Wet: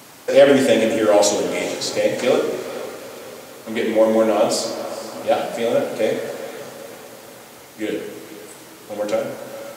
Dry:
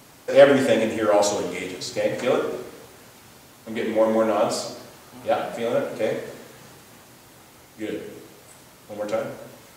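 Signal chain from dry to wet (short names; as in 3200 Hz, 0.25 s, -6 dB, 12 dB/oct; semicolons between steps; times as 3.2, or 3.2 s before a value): HPF 220 Hz 6 dB/oct; diffused feedback echo 0.453 s, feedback 49%, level -14.5 dB; dynamic EQ 1200 Hz, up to -7 dB, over -36 dBFS, Q 0.95; maximiser +8 dB; gain -1 dB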